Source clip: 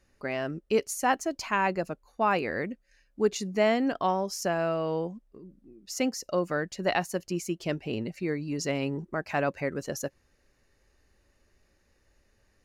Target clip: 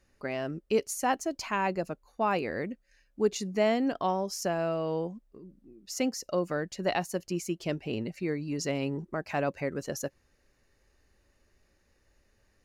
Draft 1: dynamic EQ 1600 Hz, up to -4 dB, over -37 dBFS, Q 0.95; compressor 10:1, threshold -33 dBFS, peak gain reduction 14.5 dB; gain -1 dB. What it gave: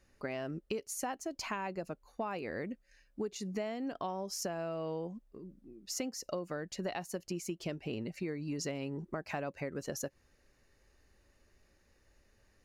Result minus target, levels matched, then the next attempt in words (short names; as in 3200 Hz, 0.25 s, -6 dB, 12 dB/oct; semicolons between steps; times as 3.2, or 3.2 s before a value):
compressor: peak gain reduction +14.5 dB
dynamic EQ 1600 Hz, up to -4 dB, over -37 dBFS, Q 0.95; gain -1 dB